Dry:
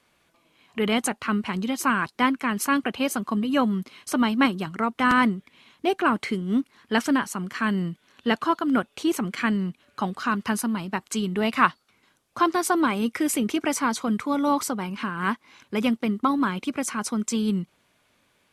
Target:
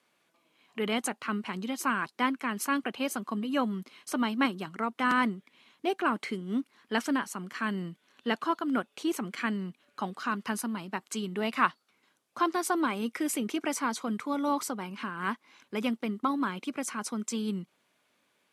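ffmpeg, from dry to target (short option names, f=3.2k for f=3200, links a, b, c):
-af "highpass=190,volume=-6dB"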